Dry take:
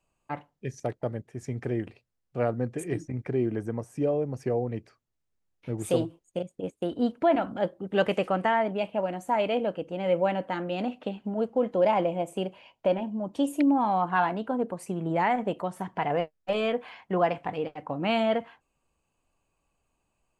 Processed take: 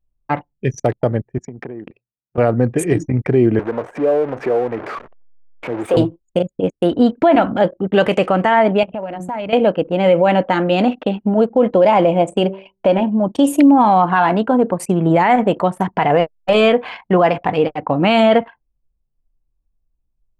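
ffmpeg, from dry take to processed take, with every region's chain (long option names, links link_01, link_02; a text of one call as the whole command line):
ffmpeg -i in.wav -filter_complex "[0:a]asettb=1/sr,asplit=3[link_01][link_02][link_03];[link_01]atrim=end=1.384[link_04];[link_02]atrim=start=1.38:end=2.38,asetpts=PTS-STARTPTS,afade=type=in:duration=0.004:curve=qsin,afade=type=out:start_time=0.996:duration=0.004:curve=qsin,acompressor=threshold=-39dB:ratio=16:attack=3.2:release=140:knee=1:detection=peak,highpass=180,lowpass=6100[link_05];[link_03]atrim=start=2.376[link_06];[link_04][link_05]acrossfade=duration=0.004:curve1=hsin:curve2=qsin[link_07];[link_07][link_06]acrossfade=duration=0.004:curve1=qsin:curve2=hsin,asettb=1/sr,asplit=3[link_08][link_09][link_10];[link_08]atrim=end=3.594[link_11];[link_09]atrim=start=3.59:end=5.97,asetpts=PTS-STARTPTS,afade=type=in:duration=0.004:curve=qsin,afade=type=out:start_time=2.376:duration=0.004:curve=qsin,aeval=exprs='val(0)+0.5*0.02*sgn(val(0))':channel_layout=same,acompressor=threshold=-28dB:ratio=2:attack=3.2:release=140:knee=1:detection=peak,acrossover=split=310 2300:gain=0.112 1 0.112[link_12][link_13][link_14];[link_12][link_13][link_14]amix=inputs=3:normalize=0[link_15];[link_10]atrim=start=5.966[link_16];[link_11][link_15]acrossfade=duration=0.004:curve1=hsin:curve2=qsin[link_17];[link_17][link_16]acrossfade=duration=0.004:curve1=qsin:curve2=hsin,asettb=1/sr,asplit=3[link_18][link_19][link_20];[link_18]atrim=end=8.834[link_21];[link_19]atrim=start=8.83:end=9.53,asetpts=PTS-STARTPTS,afade=type=in:duration=0.004:curve=qsin,afade=type=out:start_time=0.696:duration=0.004:curve=qsin,bandreject=frequency=60:width_type=h:width=6,bandreject=frequency=120:width_type=h:width=6,bandreject=frequency=180:width_type=h:width=6,bandreject=frequency=240:width_type=h:width=6,bandreject=frequency=300:width_type=h:width=6,bandreject=frequency=360:width_type=h:width=6,bandreject=frequency=420:width_type=h:width=6,bandreject=frequency=480:width_type=h:width=6,bandreject=frequency=540:width_type=h:width=6,asubboost=boost=12:cutoff=190,acompressor=threshold=-39dB:ratio=4:attack=3.2:release=140:knee=1:detection=peak[link_22];[link_20]atrim=start=9.526[link_23];[link_21][link_22]acrossfade=duration=0.004:curve1=hsin:curve2=qsin[link_24];[link_24][link_23]acrossfade=duration=0.004:curve1=qsin:curve2=hsin,asettb=1/sr,asplit=3[link_25][link_26][link_27];[link_25]atrim=end=12.194[link_28];[link_26]atrim=start=12.19:end=12.86,asetpts=PTS-STARTPTS,afade=type=in:duration=0.004:curve=qsin,afade=type=out:start_time=0.666:duration=0.004:curve=qsin,lowpass=frequency=9000:width=0.5412,lowpass=frequency=9000:width=1.3066,bandreject=frequency=192.7:width_type=h:width=4,bandreject=frequency=385.4:width_type=h:width=4,bandreject=frequency=578.1:width_type=h:width=4[link_29];[link_27]atrim=start=12.856[link_30];[link_28][link_29]acrossfade=duration=0.004:curve1=hsin:curve2=qsin[link_31];[link_31][link_30]acrossfade=duration=0.004:curve1=qsin:curve2=hsin,anlmdn=0.0158,alimiter=level_in=18.5dB:limit=-1dB:release=50:level=0:latency=1,volume=-3dB" out.wav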